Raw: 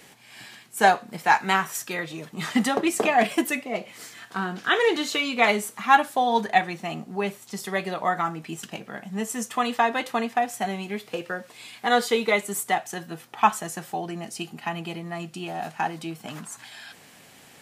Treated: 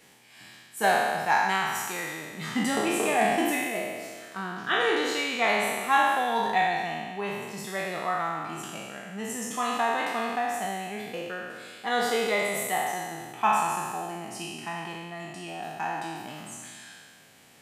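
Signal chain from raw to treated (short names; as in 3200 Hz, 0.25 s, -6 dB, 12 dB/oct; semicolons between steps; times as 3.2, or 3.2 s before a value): spectral trails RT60 1.72 s; gain -8 dB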